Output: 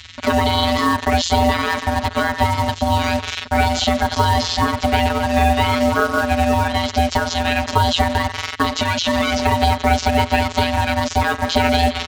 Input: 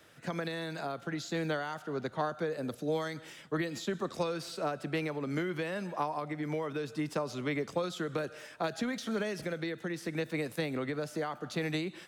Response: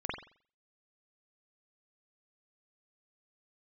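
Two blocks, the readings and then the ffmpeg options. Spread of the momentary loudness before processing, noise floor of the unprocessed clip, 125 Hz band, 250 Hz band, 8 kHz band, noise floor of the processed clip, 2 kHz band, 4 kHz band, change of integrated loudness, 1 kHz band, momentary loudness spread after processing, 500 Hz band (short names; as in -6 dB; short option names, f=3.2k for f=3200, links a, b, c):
3 LU, -53 dBFS, +19.0 dB, +14.5 dB, +19.5 dB, -32 dBFS, +18.0 dB, +22.5 dB, +17.5 dB, +22.5 dB, 3 LU, +14.0 dB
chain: -filter_complex "[0:a]equalizer=f=3.4k:w=3.2:g=6.5,asplit=2[a][b];[b]aecho=0:1:220:0.0794[c];[a][c]amix=inputs=2:normalize=0,acompressor=threshold=-33dB:ratio=6,afftfilt=real='hypot(re,im)*cos(PI*b)':imag='0':win_size=1024:overlap=0.75,aeval=exprs='val(0)*sin(2*PI*420*n/s)':c=same,apsyclip=33dB,aresample=16000,aresample=44100,acrossover=split=170|1700[d][e][f];[e]acrusher=bits=3:mix=0:aa=0.5[g];[d][g][f]amix=inputs=3:normalize=0,volume=-4.5dB"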